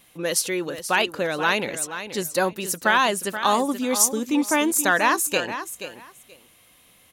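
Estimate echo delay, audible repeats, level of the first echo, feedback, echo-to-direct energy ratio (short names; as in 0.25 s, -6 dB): 0.479 s, 2, -11.0 dB, 18%, -11.0 dB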